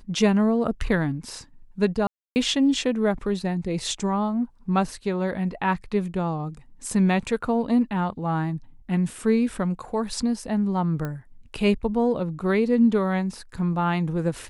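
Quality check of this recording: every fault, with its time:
2.07–2.36 gap 0.289 s
11.05 pop -18 dBFS

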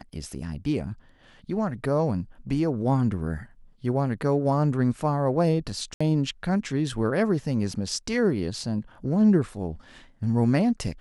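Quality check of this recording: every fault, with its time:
5.94–6 gap 65 ms

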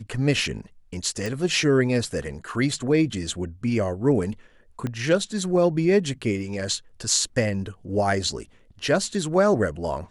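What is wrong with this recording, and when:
1.26 pop
4.87 pop -17 dBFS

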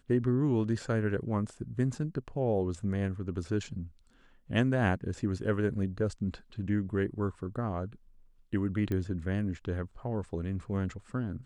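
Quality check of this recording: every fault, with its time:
8.92 pop -22 dBFS

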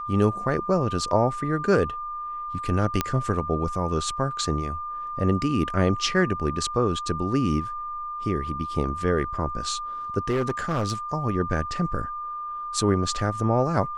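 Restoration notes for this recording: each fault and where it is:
tone 1200 Hz -30 dBFS
3.01 pop -7 dBFS
10.29–10.92 clipped -20 dBFS

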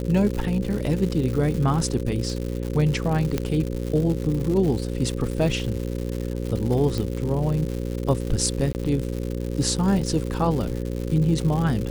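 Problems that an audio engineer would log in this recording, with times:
buzz 60 Hz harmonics 9 -28 dBFS
crackle 200/s -28 dBFS
3.38 pop -10 dBFS
6.98 pop
8.73–8.75 gap 19 ms

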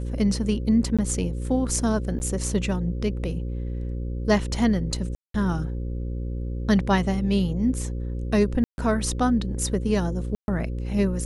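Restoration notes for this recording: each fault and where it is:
buzz 60 Hz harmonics 9 -29 dBFS
0.97–0.99 gap 16 ms
2.19–2.2 gap 9.8 ms
5.15–5.34 gap 0.193 s
8.64–8.78 gap 0.141 s
10.35–10.48 gap 0.131 s

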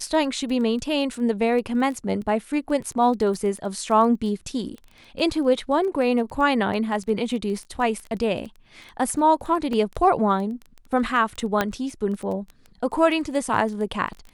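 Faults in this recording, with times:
crackle 11/s -30 dBFS
9.73 gap 2.1 ms
11.61 pop -7 dBFS

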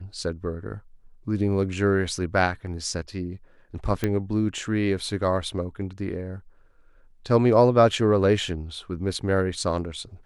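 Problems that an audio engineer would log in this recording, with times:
4.04 pop -11 dBFS

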